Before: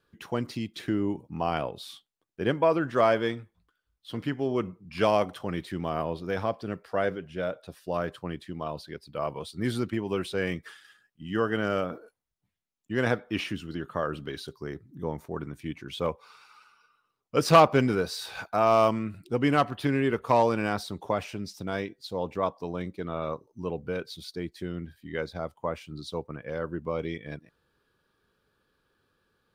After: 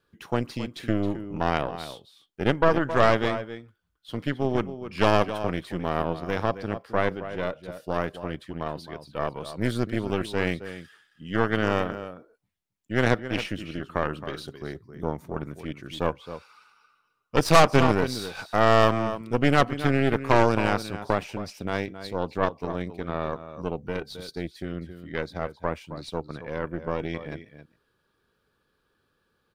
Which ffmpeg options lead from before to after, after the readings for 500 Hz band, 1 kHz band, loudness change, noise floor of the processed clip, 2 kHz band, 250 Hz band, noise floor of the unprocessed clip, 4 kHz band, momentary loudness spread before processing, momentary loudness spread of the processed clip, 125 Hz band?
+1.5 dB, +2.0 dB, +2.5 dB, -73 dBFS, +5.0 dB, +2.5 dB, -79 dBFS, +3.5 dB, 14 LU, 15 LU, +4.5 dB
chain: -filter_complex "[0:a]asplit=2[a][b];[b]adelay=268.2,volume=-10dB,highshelf=f=4k:g=-6.04[c];[a][c]amix=inputs=2:normalize=0,aeval=exprs='0.501*(cos(1*acos(clip(val(0)/0.501,-1,1)))-cos(1*PI/2))+0.112*(cos(6*acos(clip(val(0)/0.501,-1,1)))-cos(6*PI/2))':c=same"

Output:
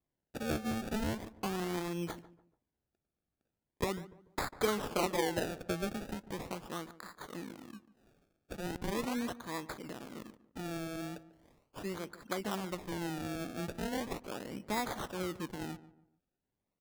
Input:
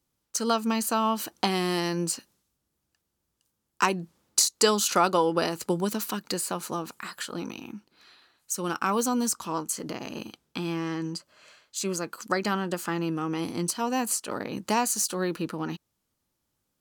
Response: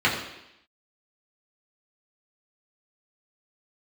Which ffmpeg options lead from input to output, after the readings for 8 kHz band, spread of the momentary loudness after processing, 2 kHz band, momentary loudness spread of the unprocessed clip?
-19.0 dB, 14 LU, -8.5 dB, 13 LU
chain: -filter_complex "[0:a]equalizer=f=5.1k:t=o:w=2.2:g=-5.5,acrusher=samples=30:mix=1:aa=0.000001:lfo=1:lforange=30:lforate=0.39,asplit=2[a][b];[b]adelay=145,lowpass=f=1.3k:p=1,volume=-15.5dB,asplit=2[c][d];[d]adelay=145,lowpass=f=1.3k:p=1,volume=0.36,asplit=2[e][f];[f]adelay=145,lowpass=f=1.3k:p=1,volume=0.36[g];[c][e][g]amix=inputs=3:normalize=0[h];[a][h]amix=inputs=2:normalize=0,volume=-9dB"

